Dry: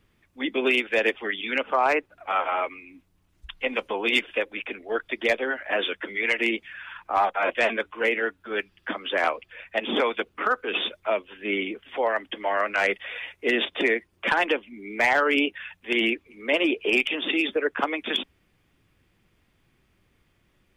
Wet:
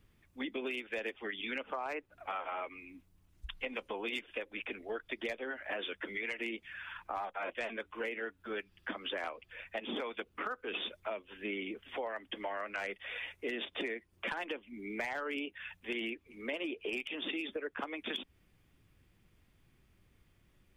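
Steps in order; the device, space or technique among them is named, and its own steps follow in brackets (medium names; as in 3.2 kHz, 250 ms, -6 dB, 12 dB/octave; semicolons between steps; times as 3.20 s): ASMR close-microphone chain (bass shelf 180 Hz +7 dB; compression 6:1, threshold -30 dBFS, peak gain reduction 13 dB; treble shelf 6.9 kHz +5.5 dB); trim -6 dB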